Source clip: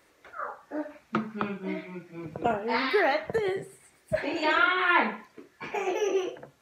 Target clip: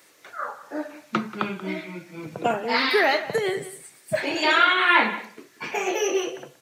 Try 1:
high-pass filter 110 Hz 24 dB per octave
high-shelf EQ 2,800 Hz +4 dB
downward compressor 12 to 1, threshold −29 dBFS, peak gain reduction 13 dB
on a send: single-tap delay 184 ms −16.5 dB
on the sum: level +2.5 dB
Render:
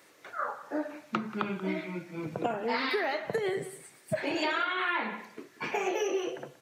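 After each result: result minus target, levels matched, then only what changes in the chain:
downward compressor: peak gain reduction +13 dB; 4,000 Hz band −2.0 dB
remove: downward compressor 12 to 1, threshold −29 dBFS, peak gain reduction 13 dB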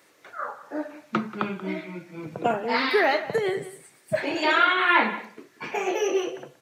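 4,000 Hz band −2.5 dB
change: high-shelf EQ 2,800 Hz +11.5 dB

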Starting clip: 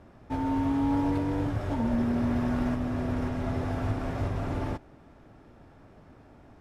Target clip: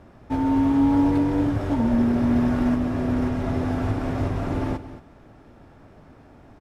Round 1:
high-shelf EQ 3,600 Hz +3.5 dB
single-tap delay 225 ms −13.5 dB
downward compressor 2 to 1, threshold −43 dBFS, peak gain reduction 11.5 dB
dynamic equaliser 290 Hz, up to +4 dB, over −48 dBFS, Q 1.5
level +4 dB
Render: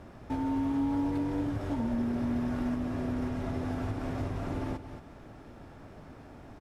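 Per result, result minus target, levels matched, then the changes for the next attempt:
downward compressor: peak gain reduction +11.5 dB; 8,000 Hz band +3.5 dB
remove: downward compressor 2 to 1, threshold −43 dBFS, peak gain reduction 11.5 dB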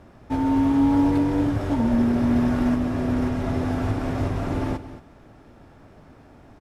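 8,000 Hz band +3.0 dB
remove: high-shelf EQ 3,600 Hz +3.5 dB

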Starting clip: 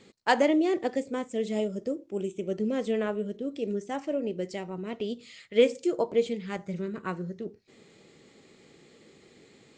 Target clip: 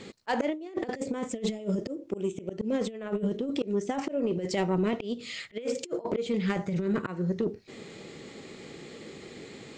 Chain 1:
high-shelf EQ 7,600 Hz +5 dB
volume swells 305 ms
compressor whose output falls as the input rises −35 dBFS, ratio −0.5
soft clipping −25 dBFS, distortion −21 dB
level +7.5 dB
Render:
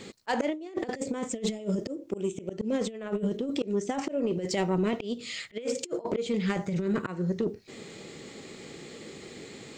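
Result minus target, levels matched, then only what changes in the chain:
8,000 Hz band +4.5 dB
change: high-shelf EQ 7,600 Hz −5 dB

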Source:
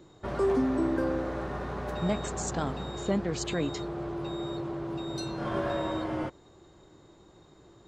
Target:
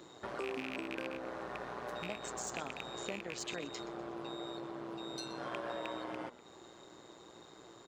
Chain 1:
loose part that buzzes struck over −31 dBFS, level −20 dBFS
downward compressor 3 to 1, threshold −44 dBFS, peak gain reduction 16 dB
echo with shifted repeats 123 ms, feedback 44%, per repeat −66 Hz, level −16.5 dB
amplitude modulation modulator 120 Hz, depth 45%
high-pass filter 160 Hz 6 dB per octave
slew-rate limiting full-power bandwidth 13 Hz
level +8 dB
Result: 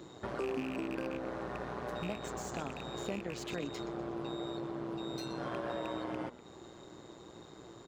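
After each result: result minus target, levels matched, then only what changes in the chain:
slew-rate limiting: distortion +11 dB; 125 Hz band +6.0 dB
change: slew-rate limiting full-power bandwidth 39 Hz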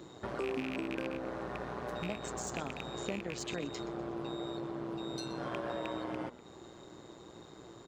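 125 Hz band +5.5 dB
change: high-pass filter 560 Hz 6 dB per octave

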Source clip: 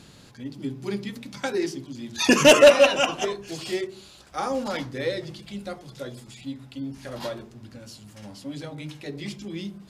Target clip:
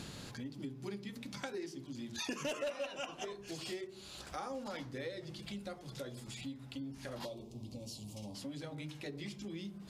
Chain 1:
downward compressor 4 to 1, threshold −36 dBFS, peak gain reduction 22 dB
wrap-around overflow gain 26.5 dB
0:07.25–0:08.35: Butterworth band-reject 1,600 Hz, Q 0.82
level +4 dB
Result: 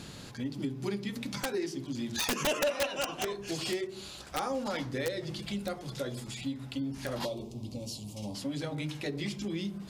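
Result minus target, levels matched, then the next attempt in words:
downward compressor: peak gain reduction −9 dB
downward compressor 4 to 1, threshold −48 dBFS, peak gain reduction 31 dB
wrap-around overflow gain 26.5 dB
0:07.25–0:08.35: Butterworth band-reject 1,600 Hz, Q 0.82
level +4 dB

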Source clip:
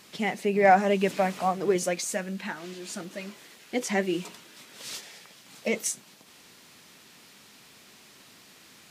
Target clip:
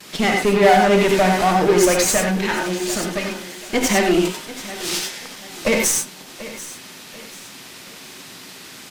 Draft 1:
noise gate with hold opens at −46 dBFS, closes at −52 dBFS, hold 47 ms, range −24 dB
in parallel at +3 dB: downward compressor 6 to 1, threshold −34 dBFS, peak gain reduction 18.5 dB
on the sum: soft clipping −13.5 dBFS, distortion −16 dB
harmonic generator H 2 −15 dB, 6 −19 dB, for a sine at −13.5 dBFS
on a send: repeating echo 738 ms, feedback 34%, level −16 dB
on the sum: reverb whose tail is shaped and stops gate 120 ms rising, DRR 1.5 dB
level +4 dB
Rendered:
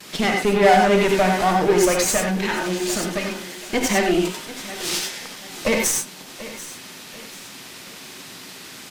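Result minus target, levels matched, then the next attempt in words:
downward compressor: peak gain reduction +8 dB
noise gate with hold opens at −46 dBFS, closes at −52 dBFS, hold 47 ms, range −24 dB
in parallel at +3 dB: downward compressor 6 to 1, threshold −24.5 dBFS, peak gain reduction 10.5 dB
on the sum: soft clipping −13.5 dBFS, distortion −14 dB
harmonic generator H 2 −15 dB, 6 −19 dB, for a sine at −13.5 dBFS
on a send: repeating echo 738 ms, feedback 34%, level −16 dB
on the sum: reverb whose tail is shaped and stops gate 120 ms rising, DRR 1.5 dB
level +4 dB

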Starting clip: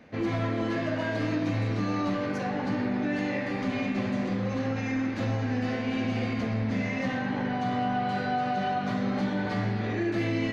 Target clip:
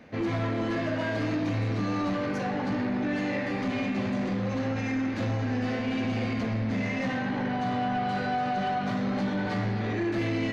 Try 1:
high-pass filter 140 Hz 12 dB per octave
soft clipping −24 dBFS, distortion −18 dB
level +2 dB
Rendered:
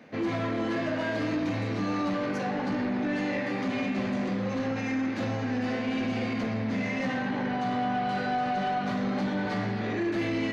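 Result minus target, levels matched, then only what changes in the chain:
125 Hz band −3.5 dB
remove: high-pass filter 140 Hz 12 dB per octave

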